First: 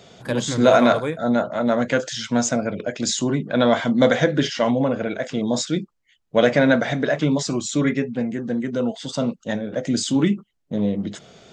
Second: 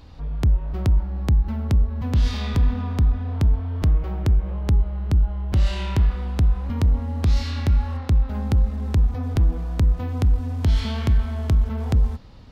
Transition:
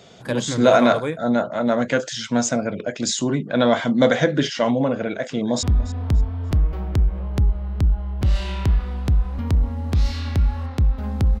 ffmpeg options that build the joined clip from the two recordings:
-filter_complex "[0:a]apad=whole_dur=11.4,atrim=end=11.4,atrim=end=5.632[a];[1:a]atrim=start=2.938:end=8.71[b];[a][b]acrossfade=d=0.004:c1=hsin:c2=hsin,asplit=2[c][d];[d]afade=t=in:st=5.16:d=0.01,afade=t=out:st=5.63:d=0.01,aecho=0:1:290|580|870:0.133352|0.0400056|0.0120017[e];[c][e]amix=inputs=2:normalize=0"

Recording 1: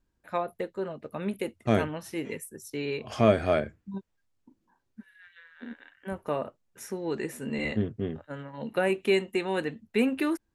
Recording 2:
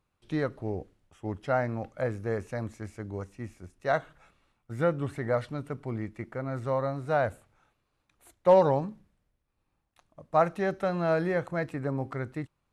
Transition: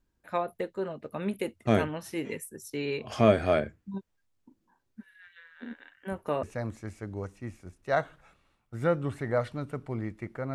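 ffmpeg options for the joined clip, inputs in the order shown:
-filter_complex "[0:a]apad=whole_dur=10.54,atrim=end=10.54,atrim=end=6.432[a];[1:a]atrim=start=2.398:end=6.51[b];[a][b]acrossfade=d=0.004:c1=hsin:c2=hsin"

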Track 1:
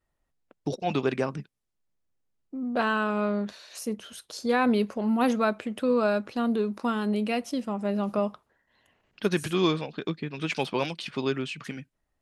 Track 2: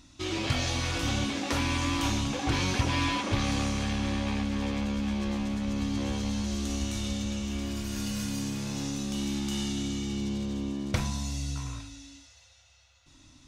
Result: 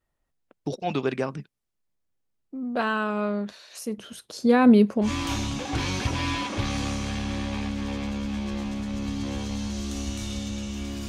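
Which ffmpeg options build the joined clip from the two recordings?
-filter_complex "[0:a]asettb=1/sr,asplit=3[a][b][c];[a]atrim=end=3.984[d];[b]atrim=start=3.98:end=5.11,asetpts=PTS-STARTPTS,afade=t=in:d=0.004:c=qsin,afade=t=out:st=1.126:d=0.004:c=qsin,equalizer=f=180:t=o:w=2.9:g=9.5[e];[c]atrim=start=5.106[f];[d][e]acrossfade=d=0.004:c1=hsin:c2=qsin[g];[g][f]acrossfade=d=0.004:c1=qsin:c2=hsin,apad=whole_dur=11.08,atrim=end=11.08,atrim=end=5.11,asetpts=PTS-STARTPTS[h];[1:a]atrim=start=1.75:end=7.82,asetpts=PTS-STARTPTS[i];[h][i]acrossfade=d=0.1:c1=tri:c2=tri"

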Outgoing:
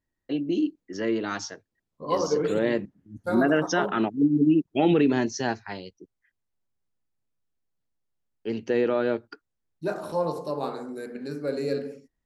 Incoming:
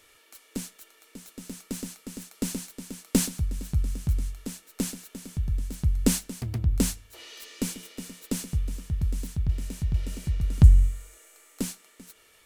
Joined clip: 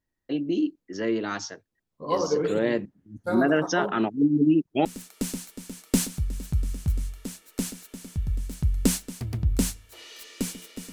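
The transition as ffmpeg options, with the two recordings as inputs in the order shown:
-filter_complex "[0:a]apad=whole_dur=10.92,atrim=end=10.92,atrim=end=4.852[a];[1:a]atrim=start=2.058:end=8.13[b];[a][b]acrossfade=d=0.004:c1=hsin:c2=hsin"

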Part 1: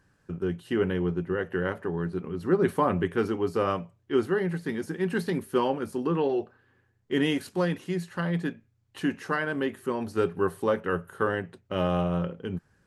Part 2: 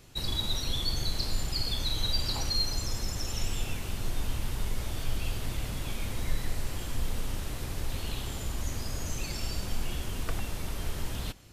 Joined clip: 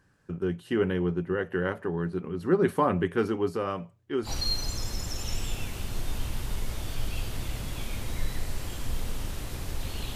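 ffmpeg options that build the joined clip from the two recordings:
-filter_complex "[0:a]asettb=1/sr,asplit=3[a][b][c];[a]atrim=end=3.524[d];[b]atrim=start=3.52:end=4.31,asetpts=PTS-STARTPTS,afade=t=in:d=0.004:c=qsin,afade=t=out:st=0.786:d=0.004:c=qsin,acompressor=threshold=-32dB:ratio=1.5:attack=3.2:release=140:knee=1:detection=peak[e];[c]atrim=start=4.306[f];[d][e]acrossfade=d=0.004:c1=hsin:c2=qsin[g];[g][f]acrossfade=d=0.004:c1=qsin:c2=hsin,apad=whole_dur=10.15,atrim=end=10.15,atrim=end=4.31,asetpts=PTS-STARTPTS[h];[1:a]atrim=start=2.32:end=8.24,asetpts=PTS-STARTPTS[i];[h][i]acrossfade=d=0.08:c1=tri:c2=tri"

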